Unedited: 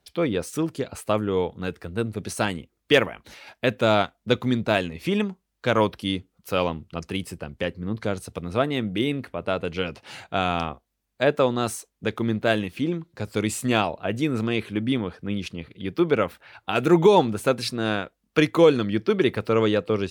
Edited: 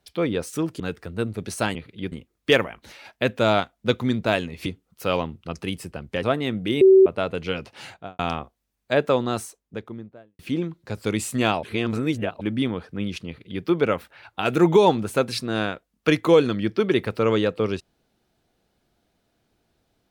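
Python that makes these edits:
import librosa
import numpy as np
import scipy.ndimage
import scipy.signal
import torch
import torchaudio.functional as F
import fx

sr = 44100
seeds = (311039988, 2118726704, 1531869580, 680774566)

y = fx.studio_fade_out(x, sr, start_s=10.16, length_s=0.33)
y = fx.studio_fade_out(y, sr, start_s=11.43, length_s=1.26)
y = fx.edit(y, sr, fx.cut(start_s=0.8, length_s=0.79),
    fx.cut(start_s=5.08, length_s=1.05),
    fx.cut(start_s=7.7, length_s=0.83),
    fx.bleep(start_s=9.11, length_s=0.25, hz=382.0, db=-8.5),
    fx.reverse_span(start_s=13.93, length_s=0.78),
    fx.duplicate(start_s=15.57, length_s=0.37, to_s=2.54), tone=tone)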